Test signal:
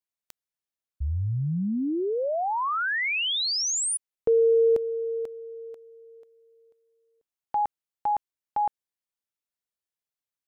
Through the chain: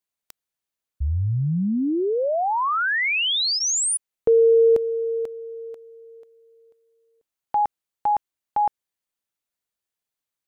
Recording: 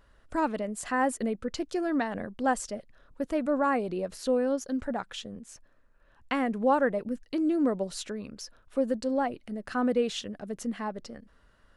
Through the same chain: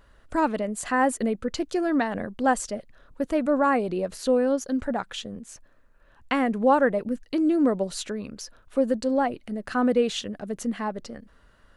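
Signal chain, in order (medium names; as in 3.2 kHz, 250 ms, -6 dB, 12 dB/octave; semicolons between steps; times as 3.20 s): band-stop 5.3 kHz, Q 22; trim +4.5 dB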